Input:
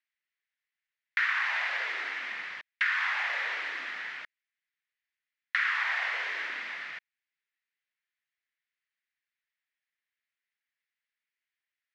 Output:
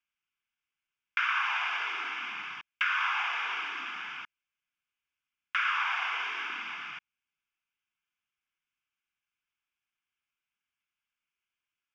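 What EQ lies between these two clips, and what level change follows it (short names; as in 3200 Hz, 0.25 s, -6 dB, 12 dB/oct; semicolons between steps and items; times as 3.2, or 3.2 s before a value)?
air absorption 94 m; fixed phaser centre 2800 Hz, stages 8; +6.0 dB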